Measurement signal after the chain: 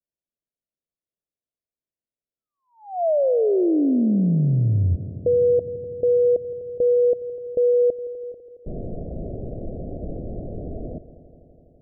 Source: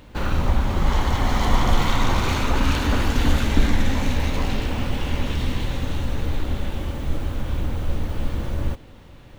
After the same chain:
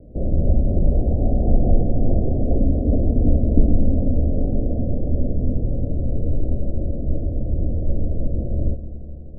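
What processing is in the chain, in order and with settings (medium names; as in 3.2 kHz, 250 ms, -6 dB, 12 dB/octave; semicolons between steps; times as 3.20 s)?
steep low-pass 690 Hz 96 dB/octave; on a send: multi-head delay 83 ms, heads second and third, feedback 73%, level -18 dB; on the sum: trim +3 dB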